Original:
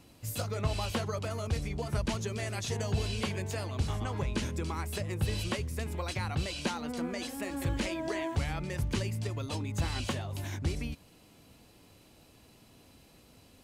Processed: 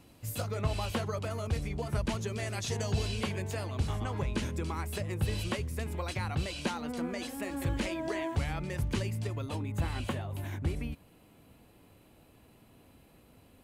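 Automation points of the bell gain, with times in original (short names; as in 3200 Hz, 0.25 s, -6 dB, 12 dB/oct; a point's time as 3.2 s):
bell 5500 Hz 1.2 oct
2.17 s -4 dB
2.94 s +3.5 dB
3.22 s -3.5 dB
9.2 s -3.5 dB
9.61 s -12.5 dB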